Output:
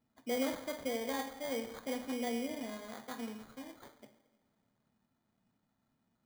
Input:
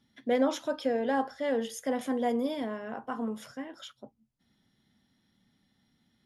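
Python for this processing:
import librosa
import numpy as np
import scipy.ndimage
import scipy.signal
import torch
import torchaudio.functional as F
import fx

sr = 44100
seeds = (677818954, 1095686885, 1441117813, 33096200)

y = fx.rev_double_slope(x, sr, seeds[0], early_s=0.93, late_s=2.9, knee_db=-18, drr_db=7.0)
y = fx.sample_hold(y, sr, seeds[1], rate_hz=2700.0, jitter_pct=0)
y = F.gain(torch.from_numpy(y), -9.0).numpy()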